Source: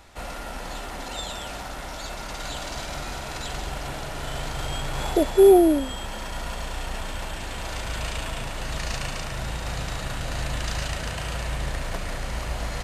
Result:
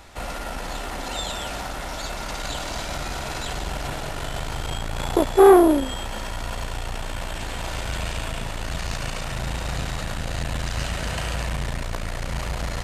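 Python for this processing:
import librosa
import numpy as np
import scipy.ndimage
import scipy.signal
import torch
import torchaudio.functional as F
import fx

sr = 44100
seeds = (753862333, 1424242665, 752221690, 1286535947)

y = fx.transformer_sat(x, sr, knee_hz=560.0)
y = y * librosa.db_to_amplitude(4.5)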